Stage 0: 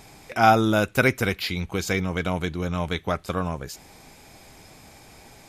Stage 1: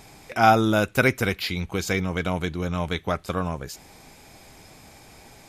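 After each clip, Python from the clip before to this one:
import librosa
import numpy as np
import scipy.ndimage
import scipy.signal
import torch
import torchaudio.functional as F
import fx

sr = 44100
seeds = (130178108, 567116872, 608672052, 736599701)

y = x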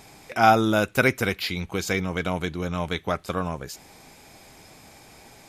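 y = fx.low_shelf(x, sr, hz=97.0, db=-6.0)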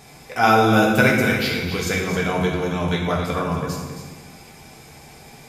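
y = x + 10.0 ** (-9.5 / 20.0) * np.pad(x, (int(268 * sr / 1000.0), 0))[:len(x)]
y = fx.rev_fdn(y, sr, rt60_s=1.3, lf_ratio=1.45, hf_ratio=0.8, size_ms=40.0, drr_db=-2.5)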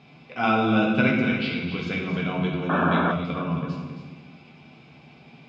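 y = fx.spec_paint(x, sr, seeds[0], shape='noise', start_s=2.69, length_s=0.43, low_hz=210.0, high_hz=1800.0, level_db=-16.0)
y = fx.cabinet(y, sr, low_hz=120.0, low_slope=12, high_hz=3700.0, hz=(160.0, 250.0, 460.0, 840.0, 1800.0, 2700.0), db=(6, 6, -5, -5, -9, 6))
y = y * librosa.db_to_amplitude(-5.0)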